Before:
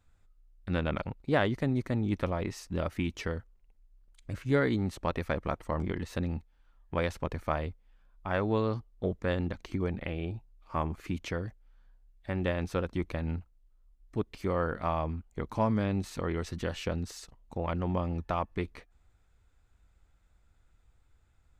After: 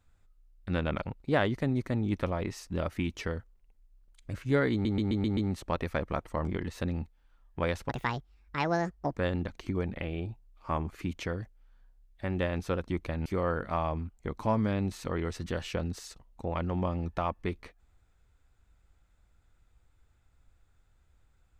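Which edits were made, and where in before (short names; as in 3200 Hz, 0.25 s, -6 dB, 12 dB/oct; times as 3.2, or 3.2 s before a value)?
4.72 stutter 0.13 s, 6 plays
7.24–9.22 speed 155%
13.31–14.38 cut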